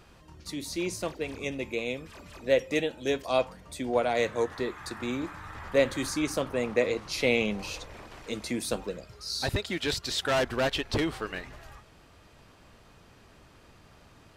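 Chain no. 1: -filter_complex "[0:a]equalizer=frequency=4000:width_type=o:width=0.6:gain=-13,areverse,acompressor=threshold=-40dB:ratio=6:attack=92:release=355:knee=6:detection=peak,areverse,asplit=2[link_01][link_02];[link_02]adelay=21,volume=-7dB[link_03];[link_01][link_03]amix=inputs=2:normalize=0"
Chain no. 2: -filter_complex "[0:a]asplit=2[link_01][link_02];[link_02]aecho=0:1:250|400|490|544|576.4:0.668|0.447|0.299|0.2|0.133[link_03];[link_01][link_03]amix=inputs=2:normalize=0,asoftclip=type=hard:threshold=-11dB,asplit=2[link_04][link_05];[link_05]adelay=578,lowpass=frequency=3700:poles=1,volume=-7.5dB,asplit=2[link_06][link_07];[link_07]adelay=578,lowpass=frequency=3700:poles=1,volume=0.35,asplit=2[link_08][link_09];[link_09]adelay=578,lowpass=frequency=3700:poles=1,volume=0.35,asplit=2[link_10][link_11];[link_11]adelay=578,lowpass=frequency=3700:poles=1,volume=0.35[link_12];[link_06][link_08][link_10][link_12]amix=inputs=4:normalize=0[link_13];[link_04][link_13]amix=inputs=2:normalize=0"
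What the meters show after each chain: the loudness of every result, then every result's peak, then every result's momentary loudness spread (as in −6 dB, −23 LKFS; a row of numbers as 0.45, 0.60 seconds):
−39.5, −27.5 LKFS; −22.0, −10.5 dBFS; 18, 10 LU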